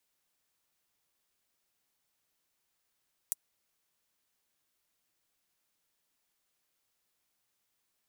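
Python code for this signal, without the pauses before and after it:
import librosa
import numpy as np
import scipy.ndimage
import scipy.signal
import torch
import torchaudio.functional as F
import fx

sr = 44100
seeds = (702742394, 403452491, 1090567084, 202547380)

y = fx.drum_hat(sr, length_s=0.24, from_hz=8200.0, decay_s=0.03)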